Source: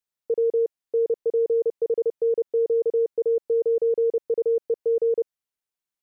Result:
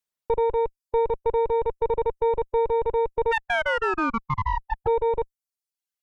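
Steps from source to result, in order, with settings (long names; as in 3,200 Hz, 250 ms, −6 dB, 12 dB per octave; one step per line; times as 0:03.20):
0:03.31–0:04.86: ring modulation 1,400 Hz → 380 Hz
harmonic generator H 2 −6 dB, 5 −27 dB, 6 −36 dB, 8 −32 dB, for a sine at −17 dBFS
reverb reduction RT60 0.89 s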